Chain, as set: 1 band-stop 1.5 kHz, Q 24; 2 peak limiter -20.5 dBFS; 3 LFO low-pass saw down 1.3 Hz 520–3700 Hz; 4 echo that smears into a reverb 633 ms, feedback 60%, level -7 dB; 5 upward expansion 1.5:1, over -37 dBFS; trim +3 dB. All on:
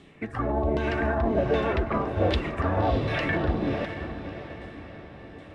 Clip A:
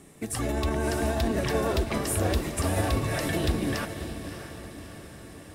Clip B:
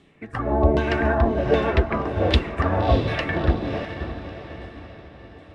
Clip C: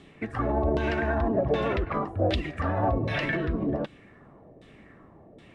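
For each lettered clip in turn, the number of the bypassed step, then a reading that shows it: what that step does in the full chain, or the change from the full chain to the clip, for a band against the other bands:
3, 4 kHz band +5.5 dB; 2, mean gain reduction 2.5 dB; 4, momentary loudness spread change -12 LU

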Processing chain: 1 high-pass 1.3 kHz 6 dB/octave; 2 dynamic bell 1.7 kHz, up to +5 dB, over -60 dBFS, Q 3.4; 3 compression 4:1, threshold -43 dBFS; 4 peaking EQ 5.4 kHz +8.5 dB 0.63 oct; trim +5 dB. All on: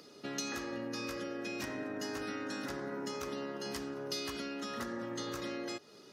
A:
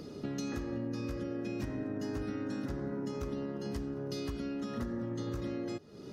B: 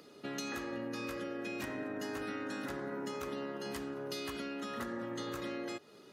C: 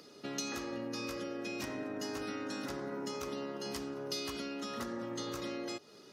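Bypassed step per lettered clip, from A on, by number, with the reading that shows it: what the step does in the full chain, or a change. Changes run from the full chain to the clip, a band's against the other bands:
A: 1, 125 Hz band +17.0 dB; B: 4, 8 kHz band -5.0 dB; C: 2, 2 kHz band -2.5 dB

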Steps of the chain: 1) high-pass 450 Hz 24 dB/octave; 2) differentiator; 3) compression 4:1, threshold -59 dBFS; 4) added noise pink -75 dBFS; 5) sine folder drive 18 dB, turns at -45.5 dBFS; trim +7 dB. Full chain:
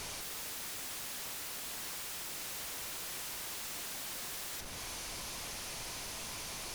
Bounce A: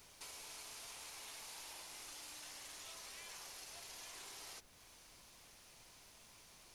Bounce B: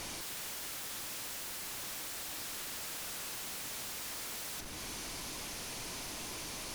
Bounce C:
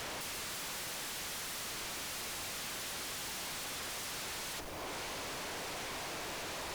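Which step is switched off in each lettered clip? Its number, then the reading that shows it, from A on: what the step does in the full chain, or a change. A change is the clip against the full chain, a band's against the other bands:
5, crest factor change +7.5 dB; 1, 250 Hz band +3.0 dB; 2, 8 kHz band -4.5 dB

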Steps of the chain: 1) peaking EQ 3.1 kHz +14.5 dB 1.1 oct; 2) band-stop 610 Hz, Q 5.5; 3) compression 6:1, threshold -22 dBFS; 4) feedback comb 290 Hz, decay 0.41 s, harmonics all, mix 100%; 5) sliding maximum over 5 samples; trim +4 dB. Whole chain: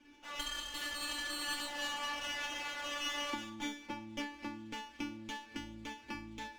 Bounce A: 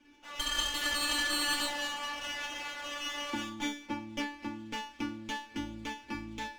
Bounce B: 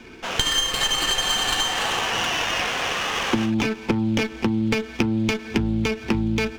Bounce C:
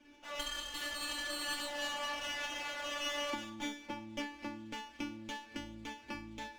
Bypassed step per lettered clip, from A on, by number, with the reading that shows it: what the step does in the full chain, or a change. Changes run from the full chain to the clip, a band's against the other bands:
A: 3, mean gain reduction 4.0 dB; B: 4, 125 Hz band +12.0 dB; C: 2, 500 Hz band +4.5 dB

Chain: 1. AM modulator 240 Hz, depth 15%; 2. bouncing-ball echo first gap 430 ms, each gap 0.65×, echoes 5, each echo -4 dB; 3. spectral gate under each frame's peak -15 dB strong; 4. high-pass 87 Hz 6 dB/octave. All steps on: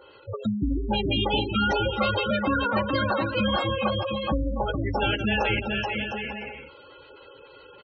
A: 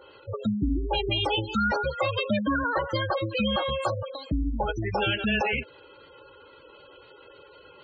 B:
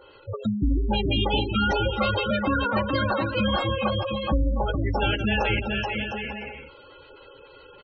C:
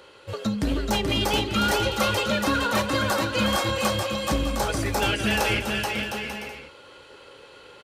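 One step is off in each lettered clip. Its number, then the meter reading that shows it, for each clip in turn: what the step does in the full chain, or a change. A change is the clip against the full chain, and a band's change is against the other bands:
2, momentary loudness spread change -2 LU; 4, 125 Hz band +3.0 dB; 3, 4 kHz band +2.5 dB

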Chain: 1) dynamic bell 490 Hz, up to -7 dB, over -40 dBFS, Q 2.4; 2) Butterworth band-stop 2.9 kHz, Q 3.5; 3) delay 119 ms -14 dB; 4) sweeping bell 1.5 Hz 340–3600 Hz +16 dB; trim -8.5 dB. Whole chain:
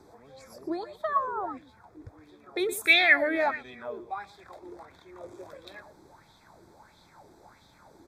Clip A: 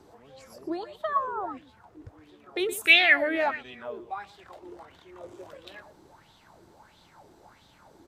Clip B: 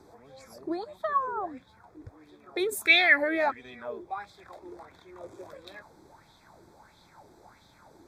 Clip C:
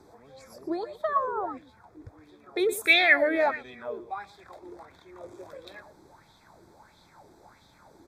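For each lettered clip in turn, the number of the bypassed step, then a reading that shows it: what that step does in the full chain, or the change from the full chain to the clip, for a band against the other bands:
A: 2, crest factor change +2.0 dB; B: 3, momentary loudness spread change -2 LU; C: 1, 500 Hz band +3.0 dB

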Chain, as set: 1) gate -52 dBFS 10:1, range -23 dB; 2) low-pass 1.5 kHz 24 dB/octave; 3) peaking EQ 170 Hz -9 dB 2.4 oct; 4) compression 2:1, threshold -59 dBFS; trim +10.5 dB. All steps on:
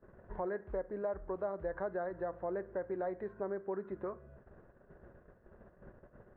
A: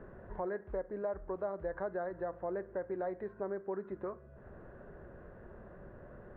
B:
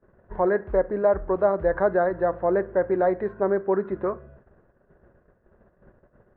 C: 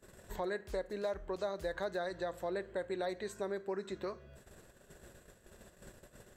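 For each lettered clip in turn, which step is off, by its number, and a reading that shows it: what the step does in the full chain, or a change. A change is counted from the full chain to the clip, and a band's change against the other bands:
1, momentary loudness spread change -5 LU; 4, mean gain reduction 13.5 dB; 2, 2 kHz band +5.0 dB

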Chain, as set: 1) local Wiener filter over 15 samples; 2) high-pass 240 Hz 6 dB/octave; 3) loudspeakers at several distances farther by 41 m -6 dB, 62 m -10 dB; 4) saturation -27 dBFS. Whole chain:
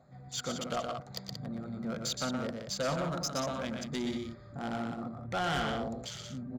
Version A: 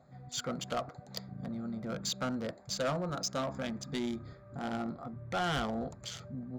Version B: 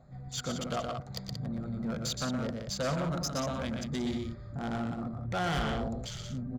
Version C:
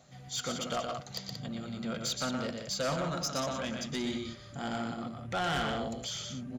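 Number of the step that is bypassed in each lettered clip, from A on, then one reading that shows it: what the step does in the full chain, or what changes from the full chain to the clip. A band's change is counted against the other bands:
3, momentary loudness spread change +2 LU; 2, crest factor change -2.0 dB; 1, 4 kHz band +2.0 dB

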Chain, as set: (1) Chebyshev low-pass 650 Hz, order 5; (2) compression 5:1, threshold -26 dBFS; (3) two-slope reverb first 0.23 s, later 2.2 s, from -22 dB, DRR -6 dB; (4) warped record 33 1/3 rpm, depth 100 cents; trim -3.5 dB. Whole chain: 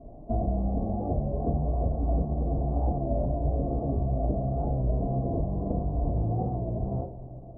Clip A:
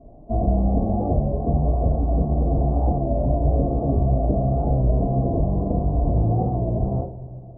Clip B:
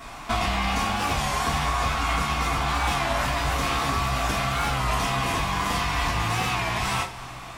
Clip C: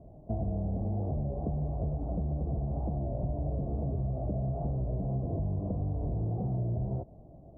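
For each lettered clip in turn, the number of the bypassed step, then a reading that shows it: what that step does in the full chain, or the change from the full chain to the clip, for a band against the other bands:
2, mean gain reduction 6.5 dB; 1, 1 kHz band +14.5 dB; 3, momentary loudness spread change -1 LU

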